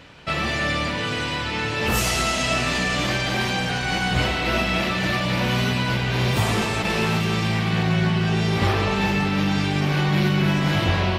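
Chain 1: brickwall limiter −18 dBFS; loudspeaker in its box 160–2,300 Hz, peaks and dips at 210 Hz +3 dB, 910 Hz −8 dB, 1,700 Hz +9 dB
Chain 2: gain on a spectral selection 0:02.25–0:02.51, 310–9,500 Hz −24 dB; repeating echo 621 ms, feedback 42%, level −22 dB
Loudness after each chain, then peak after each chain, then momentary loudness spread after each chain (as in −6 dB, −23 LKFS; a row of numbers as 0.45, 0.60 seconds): −26.5, −22.0 LKFS; −14.5, −8.0 dBFS; 3, 4 LU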